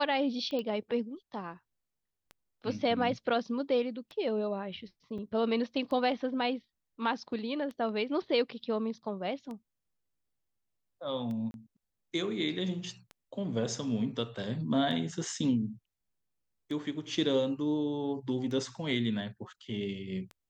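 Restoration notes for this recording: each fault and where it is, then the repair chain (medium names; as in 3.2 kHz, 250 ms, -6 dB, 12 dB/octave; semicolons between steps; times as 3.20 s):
tick 33 1/3 rpm -30 dBFS
0.59 s: pop -24 dBFS
5.18–5.19 s: dropout 5.9 ms
11.51–11.54 s: dropout 31 ms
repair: de-click; interpolate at 5.18 s, 5.9 ms; interpolate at 11.51 s, 31 ms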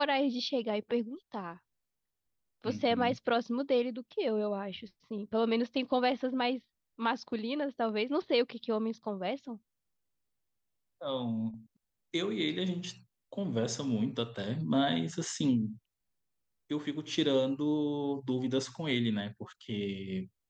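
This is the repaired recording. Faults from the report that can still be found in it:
nothing left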